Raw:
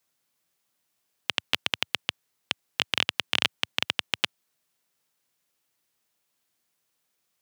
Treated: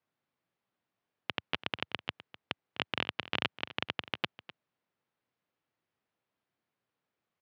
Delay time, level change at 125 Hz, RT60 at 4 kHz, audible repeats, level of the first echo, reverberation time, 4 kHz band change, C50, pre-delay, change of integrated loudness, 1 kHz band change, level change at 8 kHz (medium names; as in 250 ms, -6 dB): 253 ms, -0.5 dB, no reverb, 1, -16.5 dB, no reverb, -10.5 dB, no reverb, no reverb, -8.5 dB, -3.0 dB, under -20 dB